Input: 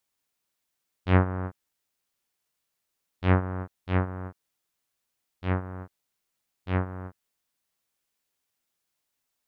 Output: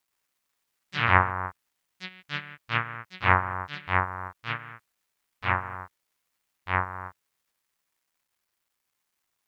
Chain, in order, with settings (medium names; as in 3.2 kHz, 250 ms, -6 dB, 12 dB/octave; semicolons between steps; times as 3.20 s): graphic EQ 125/250/500/1000/2000 Hz -9/-10/-6/+11/+9 dB; bit crusher 12-bit; ever faster or slower copies 130 ms, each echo +4 st, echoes 3, each echo -6 dB